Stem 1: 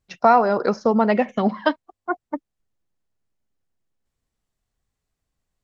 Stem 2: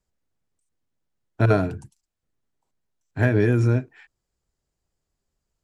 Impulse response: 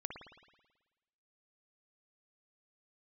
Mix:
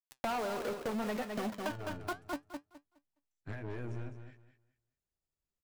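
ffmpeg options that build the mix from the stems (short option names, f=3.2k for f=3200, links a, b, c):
-filter_complex "[0:a]aeval=exprs='val(0)*gte(abs(val(0)),0.0501)':c=same,flanger=delay=6.7:depth=6:regen=67:speed=0.81:shape=sinusoidal,asoftclip=type=tanh:threshold=-24dB,volume=0dB,asplit=2[a][b];[b]volume=-8.5dB[c];[1:a]alimiter=limit=-14dB:level=0:latency=1:release=354,aeval=exprs='(tanh(20*val(0)+0.7)-tanh(0.7))/20':c=same,adelay=300,volume=-11dB,asplit=2[d][e];[e]volume=-10dB[f];[c][f]amix=inputs=2:normalize=0,aecho=0:1:208|416|624|832:1|0.22|0.0484|0.0106[g];[a][d][g]amix=inputs=3:normalize=0,acompressor=threshold=-34dB:ratio=6"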